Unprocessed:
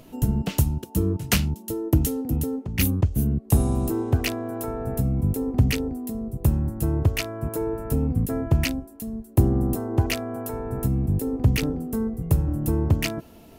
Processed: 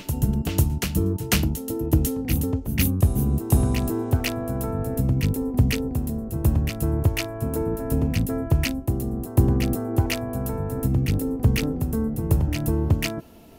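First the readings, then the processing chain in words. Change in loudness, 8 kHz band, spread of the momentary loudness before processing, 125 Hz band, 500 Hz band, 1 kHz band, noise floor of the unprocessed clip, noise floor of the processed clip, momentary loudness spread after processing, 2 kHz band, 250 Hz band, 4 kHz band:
+1.0 dB, +1.0 dB, 8 LU, +1.0 dB, +0.5 dB, +0.5 dB, −47 dBFS, −35 dBFS, 6 LU, +1.0 dB, +1.0 dB, +1.0 dB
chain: backwards echo 497 ms −6.5 dB

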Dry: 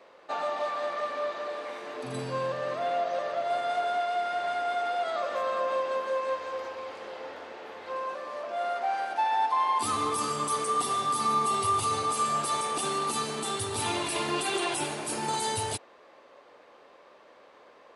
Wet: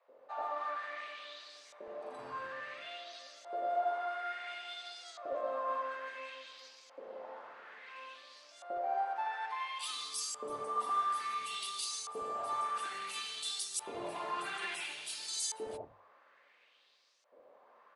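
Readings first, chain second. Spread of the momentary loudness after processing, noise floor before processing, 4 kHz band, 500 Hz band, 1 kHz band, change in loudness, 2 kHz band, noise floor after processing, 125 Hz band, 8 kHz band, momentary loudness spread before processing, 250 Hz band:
15 LU, −55 dBFS, −5.5 dB, −11.0 dB, −9.5 dB, −9.0 dB, −7.0 dB, −67 dBFS, below −20 dB, −7.0 dB, 11 LU, −17.0 dB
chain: sub-octave generator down 1 octave, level 0 dB
high-shelf EQ 6,300 Hz +11.5 dB
mains-hum notches 50/100 Hz
auto-filter band-pass saw up 0.58 Hz 460–6,600 Hz
three-band delay without the direct sound highs, mids, lows 80/150 ms, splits 170/860 Hz
level −1 dB

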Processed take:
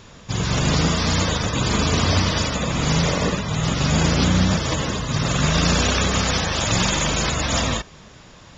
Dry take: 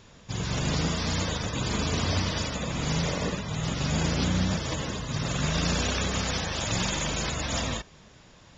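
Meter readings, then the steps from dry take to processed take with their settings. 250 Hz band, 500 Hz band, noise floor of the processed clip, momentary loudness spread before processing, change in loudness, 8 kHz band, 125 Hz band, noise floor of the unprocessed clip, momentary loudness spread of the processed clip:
+8.0 dB, +8.0 dB, −45 dBFS, 5 LU, +8.0 dB, can't be measured, +8.0 dB, −53 dBFS, 5 LU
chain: parametric band 1,200 Hz +2.5 dB 0.37 octaves
level +8 dB

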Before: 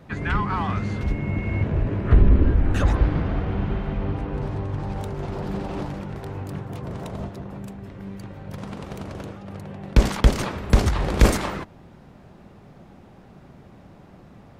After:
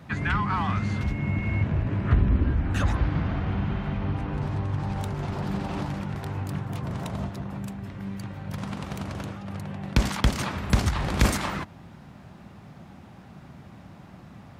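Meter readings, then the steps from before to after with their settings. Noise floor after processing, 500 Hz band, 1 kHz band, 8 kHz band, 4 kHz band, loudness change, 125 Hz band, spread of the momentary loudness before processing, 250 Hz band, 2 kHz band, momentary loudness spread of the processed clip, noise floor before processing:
−48 dBFS, −6.5 dB, −1.5 dB, −1.0 dB, −0.5 dB, −3.5 dB, −2.0 dB, 17 LU, −2.0 dB, 0.0 dB, 23 LU, −48 dBFS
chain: in parallel at +1.5 dB: downward compressor, threshold −27 dBFS, peak gain reduction 17.5 dB
on the sum: high-pass filter 65 Hz
parametric band 440 Hz −8.5 dB 1.1 octaves
level −3.5 dB

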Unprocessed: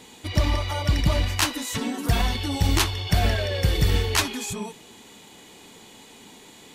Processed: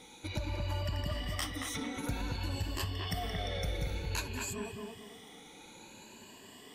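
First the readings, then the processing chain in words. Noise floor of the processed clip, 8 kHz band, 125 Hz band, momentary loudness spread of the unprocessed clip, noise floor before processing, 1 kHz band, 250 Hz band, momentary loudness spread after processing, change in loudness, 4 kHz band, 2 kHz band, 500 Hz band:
−54 dBFS, −12.5 dB, −13.0 dB, 6 LU, −48 dBFS, −12.0 dB, −12.0 dB, 15 LU, −13.0 dB, −13.0 dB, −12.0 dB, −11.0 dB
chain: rippled gain that drifts along the octave scale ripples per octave 1.4, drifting +0.55 Hz, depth 13 dB
downward compressor 3 to 1, threshold −28 dBFS, peak gain reduction 11.5 dB
bucket-brigade delay 225 ms, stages 4,096, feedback 32%, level −3 dB
level −8.5 dB

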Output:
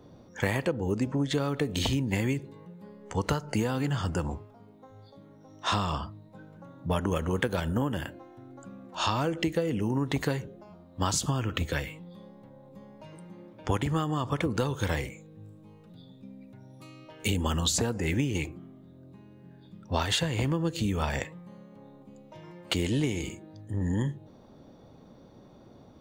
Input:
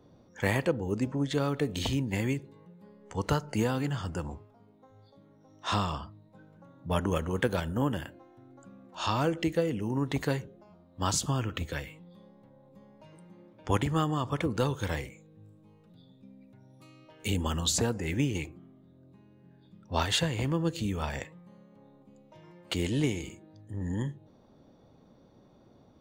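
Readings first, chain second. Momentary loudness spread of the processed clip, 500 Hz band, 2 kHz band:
20 LU, +0.5 dB, +2.0 dB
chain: downward compressor 5 to 1, threshold −30 dBFS, peak gain reduction 9 dB
level +6 dB

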